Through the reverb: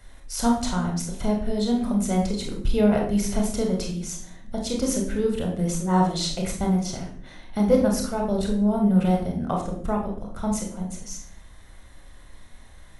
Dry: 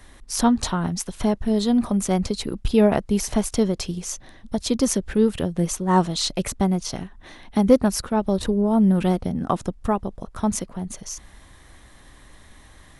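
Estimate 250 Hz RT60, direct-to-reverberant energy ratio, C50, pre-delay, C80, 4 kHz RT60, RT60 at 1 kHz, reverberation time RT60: 1.0 s, 0.0 dB, 5.5 dB, 25 ms, 9.5 dB, 0.40 s, 0.45 s, 0.55 s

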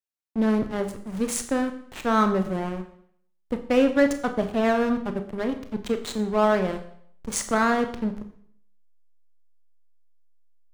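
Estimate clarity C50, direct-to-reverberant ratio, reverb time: 10.5 dB, 7.0 dB, 0.65 s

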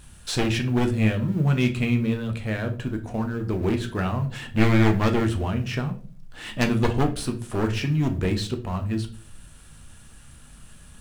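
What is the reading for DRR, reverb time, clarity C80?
5.0 dB, 0.45 s, 18.5 dB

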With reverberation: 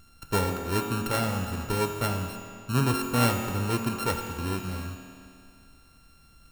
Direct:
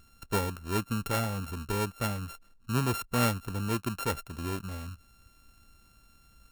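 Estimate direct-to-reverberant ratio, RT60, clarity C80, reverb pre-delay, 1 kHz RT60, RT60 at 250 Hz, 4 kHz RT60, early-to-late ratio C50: 2.5 dB, 2.4 s, 5.0 dB, 5 ms, 2.4 s, 2.4 s, 2.2 s, 4.0 dB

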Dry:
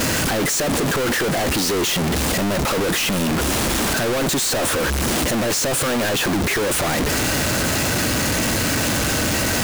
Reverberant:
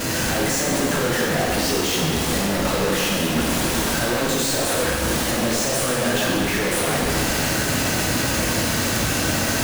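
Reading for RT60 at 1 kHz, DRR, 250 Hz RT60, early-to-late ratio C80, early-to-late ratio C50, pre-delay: 2.3 s, -4.0 dB, 2.0 s, 0.5 dB, -1.0 dB, 12 ms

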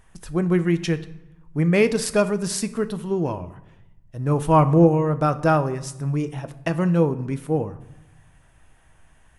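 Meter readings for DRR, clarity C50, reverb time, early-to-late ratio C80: 10.0 dB, 15.5 dB, 0.90 s, 18.0 dB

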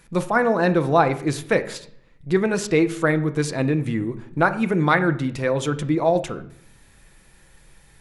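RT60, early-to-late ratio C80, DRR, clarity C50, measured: 0.60 s, 17.5 dB, 9.0 dB, 14.5 dB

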